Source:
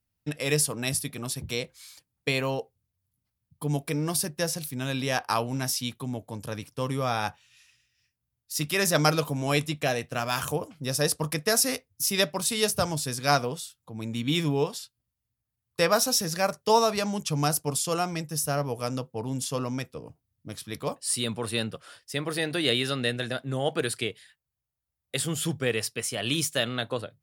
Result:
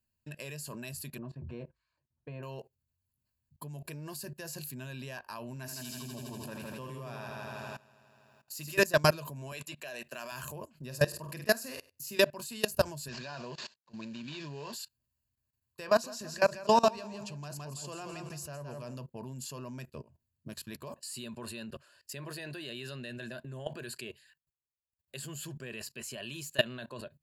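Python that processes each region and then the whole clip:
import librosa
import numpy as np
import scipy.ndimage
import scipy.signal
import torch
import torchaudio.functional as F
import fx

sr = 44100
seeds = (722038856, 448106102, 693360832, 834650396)

y = fx.chain(x, sr, fx.lowpass(hz=1100.0, slope=12),
    fx.notch_comb(f0_hz=200.0), at=(1.18, 2.43))
y = fx.chain(y, sr, fx.low_shelf(hz=71.0, db=-6.5),
    fx.echo_heads(ms=81, heads='first and second', feedback_pct=63, wet_db=-7.0), at=(5.56, 8.79))
y = fx.chain(y, sr, fx.highpass(hz=180.0, slope=12),
    fx.low_shelf(hz=330.0, db=-11.5),
    fx.band_squash(depth_pct=70), at=(9.52, 10.32))
y = fx.chain(y, sr, fx.highpass(hz=53.0, slope=12),
    fx.high_shelf(hz=4200.0, db=-4.5),
    fx.room_flutter(wall_m=8.4, rt60_s=0.28), at=(10.82, 12.19))
y = fx.chain(y, sr, fx.cvsd(bps=32000),
    fx.highpass(hz=93.0, slope=12),
    fx.tilt_eq(slope=1.5), at=(13.08, 14.73))
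y = fx.chain(y, sr, fx.lowpass(hz=7200.0, slope=12),
    fx.echo_feedback(ms=167, feedback_pct=30, wet_db=-8.0), at=(15.87, 18.97))
y = fx.ripple_eq(y, sr, per_octave=1.4, db=11)
y = fx.level_steps(y, sr, step_db=21)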